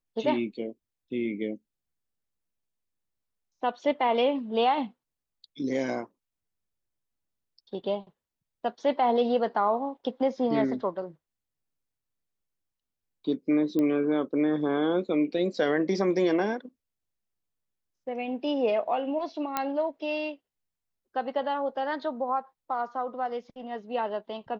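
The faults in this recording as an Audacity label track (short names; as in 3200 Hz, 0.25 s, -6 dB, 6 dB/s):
13.790000	13.790000	pop -17 dBFS
19.570000	19.570000	pop -12 dBFS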